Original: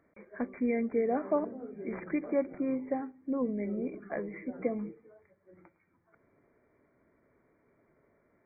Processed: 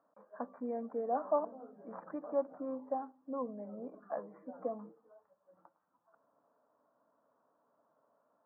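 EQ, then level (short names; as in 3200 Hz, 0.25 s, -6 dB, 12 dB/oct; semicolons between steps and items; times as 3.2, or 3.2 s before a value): Chebyshev band-pass 330–1200 Hz, order 2; fixed phaser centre 900 Hz, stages 4; +2.5 dB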